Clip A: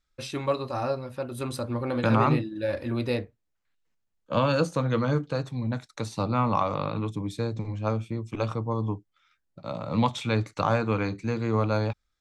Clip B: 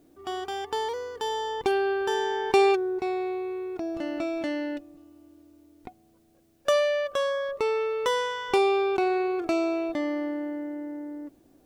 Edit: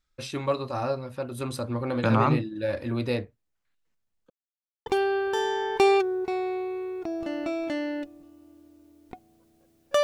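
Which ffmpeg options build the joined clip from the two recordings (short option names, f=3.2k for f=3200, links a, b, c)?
-filter_complex "[0:a]apad=whole_dur=10.03,atrim=end=10.03,asplit=2[a][b];[a]atrim=end=4.3,asetpts=PTS-STARTPTS,afade=t=out:st=4.296:d=0.004:c=hsin[c];[b]atrim=start=4.3:end=4.86,asetpts=PTS-STARTPTS,volume=0[d];[1:a]atrim=start=1.6:end=6.77,asetpts=PTS-STARTPTS,afade=t=in:d=0.004:c=hsin[e];[c][d][e]concat=n=3:v=0:a=1"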